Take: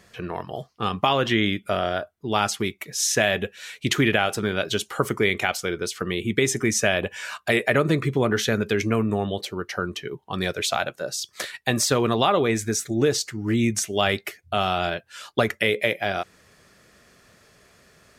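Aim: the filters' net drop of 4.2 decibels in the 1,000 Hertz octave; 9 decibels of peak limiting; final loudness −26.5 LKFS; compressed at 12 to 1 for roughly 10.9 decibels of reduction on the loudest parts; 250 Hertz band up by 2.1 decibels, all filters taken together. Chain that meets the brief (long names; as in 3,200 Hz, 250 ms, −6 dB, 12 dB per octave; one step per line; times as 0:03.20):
parametric band 250 Hz +3 dB
parametric band 1,000 Hz −6.5 dB
downward compressor 12 to 1, threshold −26 dBFS
level +7 dB
brickwall limiter −14.5 dBFS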